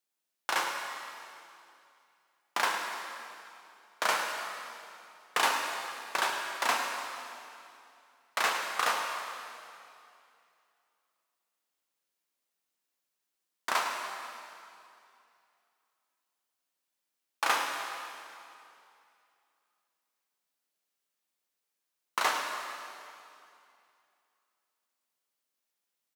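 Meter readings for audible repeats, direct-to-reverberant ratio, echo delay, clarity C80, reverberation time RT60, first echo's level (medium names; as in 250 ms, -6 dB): 1, 1.0 dB, 107 ms, 3.5 dB, 2.6 s, -11.0 dB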